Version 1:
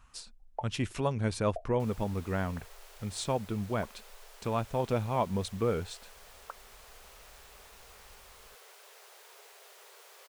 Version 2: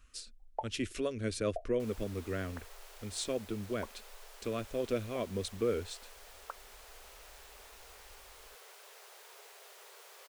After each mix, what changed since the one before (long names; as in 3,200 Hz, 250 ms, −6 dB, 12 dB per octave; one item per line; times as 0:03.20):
speech: add phaser with its sweep stopped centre 360 Hz, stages 4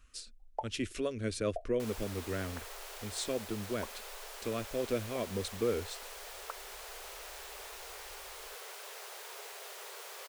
first sound: remove moving average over 6 samples
second sound +8.0 dB